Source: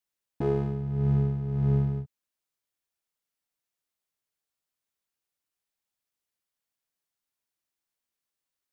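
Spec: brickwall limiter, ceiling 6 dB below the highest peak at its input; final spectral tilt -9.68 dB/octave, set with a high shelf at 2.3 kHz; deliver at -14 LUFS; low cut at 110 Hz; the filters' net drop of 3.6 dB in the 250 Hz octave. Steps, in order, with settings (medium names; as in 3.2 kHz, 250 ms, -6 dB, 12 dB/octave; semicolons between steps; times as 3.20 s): high-pass 110 Hz; peaking EQ 250 Hz -5.5 dB; treble shelf 2.3 kHz +3.5 dB; trim +19 dB; peak limiter -5.5 dBFS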